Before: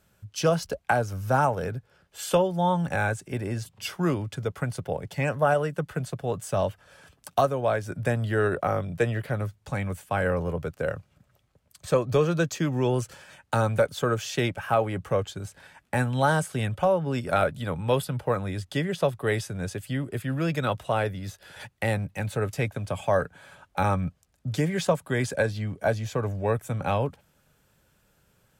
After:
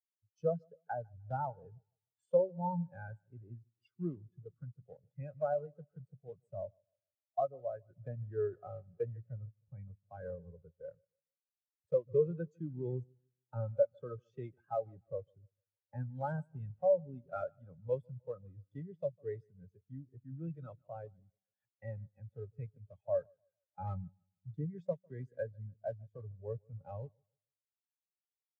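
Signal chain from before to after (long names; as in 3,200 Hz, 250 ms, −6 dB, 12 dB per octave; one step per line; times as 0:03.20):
one scale factor per block 3 bits
repeating echo 151 ms, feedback 56%, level −13.5 dB
every bin expanded away from the loudest bin 2.5 to 1
level −7 dB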